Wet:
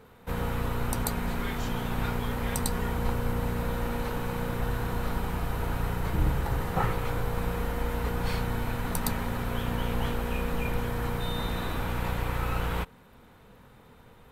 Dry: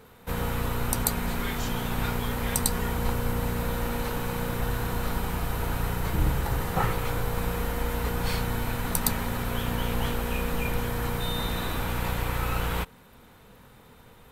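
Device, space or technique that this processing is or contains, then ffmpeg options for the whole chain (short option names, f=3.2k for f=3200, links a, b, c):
behind a face mask: -af "highshelf=f=3.5k:g=-7,volume=-1dB"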